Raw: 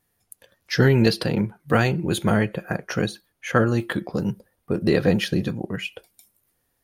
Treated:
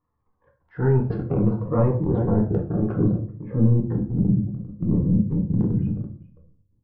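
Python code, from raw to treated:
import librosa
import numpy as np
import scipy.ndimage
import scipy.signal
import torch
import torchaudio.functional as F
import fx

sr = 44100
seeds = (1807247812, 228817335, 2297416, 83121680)

p1 = scipy.signal.sosfilt(scipy.signal.butter(2, 2300.0, 'lowpass', fs=sr, output='sos'), x)
p2 = fx.peak_eq(p1, sr, hz=76.0, db=11.0, octaves=0.78)
p3 = p2 + fx.echo_single(p2, sr, ms=399, db=-16.5, dry=0)
p4 = fx.rider(p3, sr, range_db=5, speed_s=0.5)
p5 = fx.filter_sweep_lowpass(p4, sr, from_hz=1100.0, to_hz=190.0, start_s=0.59, end_s=4.26, q=1.4)
p6 = fx.transient(p5, sr, attack_db=-8, sustain_db=8)
p7 = fx.step_gate(p6, sr, bpm=150, pattern='xxxxx.xxxx.x.x', floor_db=-60.0, edge_ms=4.5)
p8 = fx.level_steps(p7, sr, step_db=15)
p9 = p7 + (p8 * 10.0 ** (0.0 / 20.0))
p10 = fx.peak_eq(p9, sr, hz=1100.0, db=12.5, octaves=0.59)
p11 = fx.notch(p10, sr, hz=620.0, q=15.0)
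p12 = fx.room_shoebox(p11, sr, seeds[0], volume_m3=42.0, walls='mixed', distance_m=0.52)
p13 = fx.notch_cascade(p12, sr, direction='falling', hz=0.61)
y = p13 * 10.0 ** (-5.0 / 20.0)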